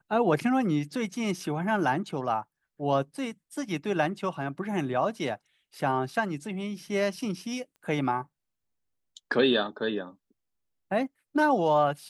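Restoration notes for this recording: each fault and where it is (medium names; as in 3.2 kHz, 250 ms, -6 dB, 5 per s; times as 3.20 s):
7.76 s: pop -41 dBFS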